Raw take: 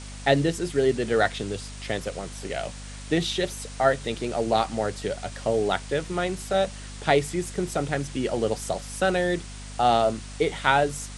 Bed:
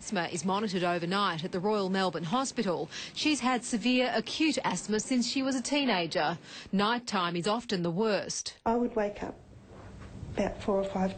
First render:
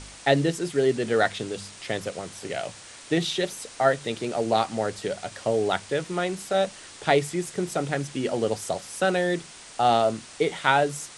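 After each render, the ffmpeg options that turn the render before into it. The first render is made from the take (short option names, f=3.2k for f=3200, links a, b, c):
-af "bandreject=f=50:t=h:w=4,bandreject=f=100:t=h:w=4,bandreject=f=150:t=h:w=4,bandreject=f=200:t=h:w=4,bandreject=f=250:t=h:w=4"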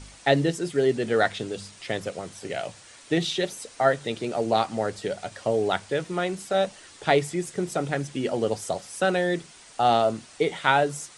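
-af "afftdn=nr=6:nf=-45"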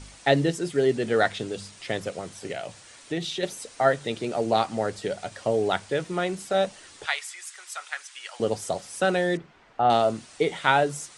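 -filter_complex "[0:a]asettb=1/sr,asplit=3[a][b][c];[a]atrim=end=2.524[d];[b]atrim=start=2.52:end=3.43,asetpts=PTS-STARTPTS,afade=t=in:d=0.004:c=qsin,afade=t=out:st=0.906:d=0.004:c=qsin,acompressor=threshold=-34dB:ratio=1.5:attack=3.2:release=140:knee=1:detection=peak[e];[c]atrim=start=3.426[f];[d][e]acrossfade=d=0.004:c1=hsin:c2=qsin[g];[g][f]acrossfade=d=0.004:c1=qsin:c2=hsin,asettb=1/sr,asplit=3[h][i][j];[h]atrim=end=7.064[k];[i]atrim=start=7.06:end=8.4,asetpts=PTS-STARTPTS,afade=t=in:d=0.004:c=qsin,afade=t=out:st=1.336:d=0.004:c=qsin,highpass=f=1.1k:w=0.5412,highpass=f=1.1k:w=1.3066[l];[j]atrim=start=8.396[m];[k][l]acrossfade=d=0.004:c1=hsin:c2=qsin[n];[n][m]acrossfade=d=0.004:c1=qsin:c2=hsin,asettb=1/sr,asplit=3[o][p][q];[o]atrim=end=9.374[r];[p]atrim=start=9.37:end=9.9,asetpts=PTS-STARTPTS,afade=t=in:d=0.004:c=qsin,afade=t=out:st=0.526:d=0.004:c=qsin,lowpass=1.8k[s];[q]atrim=start=9.896[t];[r][s]acrossfade=d=0.004:c1=hsin:c2=qsin[u];[u][t]acrossfade=d=0.004:c1=qsin:c2=hsin"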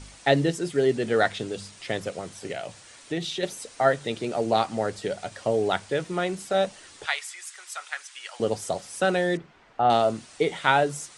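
-af anull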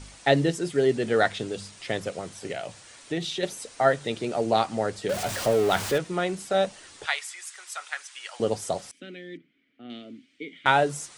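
-filter_complex "[0:a]asettb=1/sr,asplit=3[a][b][c];[a]atrim=end=5.094[d];[b]atrim=start=5.09:end=5.98,asetpts=PTS-STARTPTS,afade=t=in:d=0.004:c=qsin,afade=t=out:st=0.886:d=0.004:c=qsin,aeval=exprs='val(0)+0.5*0.0422*sgn(val(0))':c=same[e];[c]atrim=start=5.976[f];[d][e]acrossfade=d=0.004:c1=hsin:c2=qsin[g];[g][f]acrossfade=d=0.004:c1=qsin:c2=hsin,asettb=1/sr,asplit=3[h][i][j];[h]atrim=end=8.914[k];[i]atrim=start=8.91:end=10.66,asetpts=PTS-STARTPTS,afade=t=in:d=0.004:c=qsin,afade=t=out:st=1.746:d=0.004:c=qsin,asplit=3[l][m][n];[l]bandpass=f=270:t=q:w=8,volume=0dB[o];[m]bandpass=f=2.29k:t=q:w=8,volume=-6dB[p];[n]bandpass=f=3.01k:t=q:w=8,volume=-9dB[q];[o][p][q]amix=inputs=3:normalize=0[r];[j]atrim=start=10.656[s];[k][r]acrossfade=d=0.004:c1=hsin:c2=qsin[t];[t][s]acrossfade=d=0.004:c1=qsin:c2=hsin"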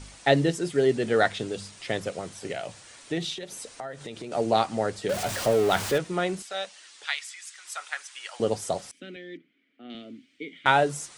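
-filter_complex "[0:a]asettb=1/sr,asplit=3[a][b][c];[a]atrim=end=3.334[d];[b]atrim=start=3.33:end=4.32,asetpts=PTS-STARTPTS,afade=t=in:d=0.004:c=qsin,afade=t=out:st=0.986:d=0.004:c=qsin,acompressor=threshold=-34dB:ratio=6:attack=3.2:release=140:knee=1:detection=peak[e];[c]atrim=start=4.316[f];[d][e]acrossfade=d=0.004:c1=hsin:c2=qsin[g];[g][f]acrossfade=d=0.004:c1=qsin:c2=hsin,asettb=1/sr,asplit=3[h][i][j];[h]atrim=end=6.424[k];[i]atrim=start=6.42:end=7.65,asetpts=PTS-STARTPTS,afade=t=in:d=0.004:c=qsin,afade=t=out:st=1.226:d=0.004:c=qsin,bandpass=f=3.9k:t=q:w=0.55[l];[j]atrim=start=7.646[m];[k][l]acrossfade=d=0.004:c1=hsin:c2=qsin[n];[n][m]acrossfade=d=0.004:c1=qsin:c2=hsin,asettb=1/sr,asplit=3[o][p][q];[o]atrim=end=9.164[r];[p]atrim=start=9.16:end=9.95,asetpts=PTS-STARTPTS,afade=t=in:d=0.004:c=qsin,afade=t=out:st=0.786:d=0.004:c=qsin,highpass=200,lowpass=6.4k[s];[q]atrim=start=9.946[t];[r][s]acrossfade=d=0.004:c1=hsin:c2=qsin[u];[u][t]acrossfade=d=0.004:c1=qsin:c2=hsin"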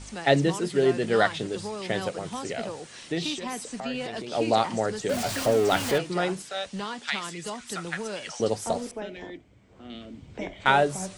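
-filter_complex "[1:a]volume=-6.5dB[a];[0:a][a]amix=inputs=2:normalize=0"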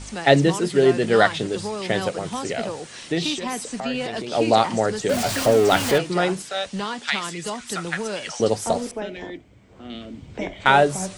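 -af "volume=5.5dB,alimiter=limit=-1dB:level=0:latency=1"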